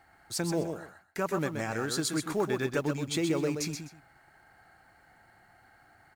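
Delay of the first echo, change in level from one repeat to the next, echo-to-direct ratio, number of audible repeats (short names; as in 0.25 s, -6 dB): 0.127 s, -13.5 dB, -6.5 dB, 2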